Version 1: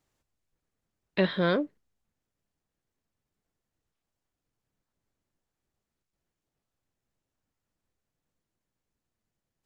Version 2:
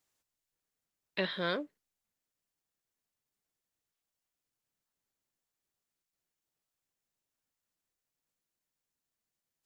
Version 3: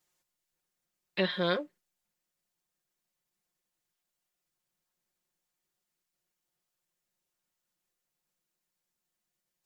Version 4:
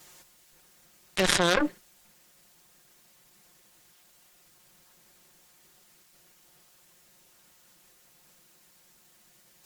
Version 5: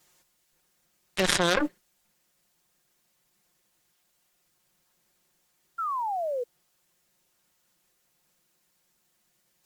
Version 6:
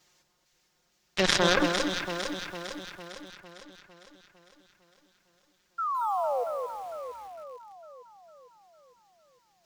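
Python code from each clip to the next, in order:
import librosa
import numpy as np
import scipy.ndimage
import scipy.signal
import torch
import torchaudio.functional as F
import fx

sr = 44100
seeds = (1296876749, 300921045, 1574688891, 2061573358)

y1 = fx.tilt_eq(x, sr, slope=2.5)
y1 = y1 * 10.0 ** (-6.0 / 20.0)
y2 = y1 + 0.99 * np.pad(y1, (int(5.6 * sr / 1000.0), 0))[:len(y1)]
y3 = fx.cheby_harmonics(y2, sr, harmonics=(4, 6, 7), levels_db=(-14, -19, -16), full_scale_db=-14.5)
y3 = fx.env_flatten(y3, sr, amount_pct=100)
y3 = y3 * 10.0 ** (4.5 / 20.0)
y4 = fx.spec_paint(y3, sr, seeds[0], shape='fall', start_s=5.78, length_s=0.66, low_hz=470.0, high_hz=1400.0, level_db=-27.0)
y4 = fx.upward_expand(y4, sr, threshold_db=-44.0, expansion=1.5)
y5 = fx.high_shelf_res(y4, sr, hz=7400.0, db=-8.5, q=1.5)
y5 = fx.echo_alternate(y5, sr, ms=227, hz=1500.0, feedback_pct=74, wet_db=-4)
y5 = fx.echo_crushed(y5, sr, ms=162, feedback_pct=55, bits=7, wet_db=-14)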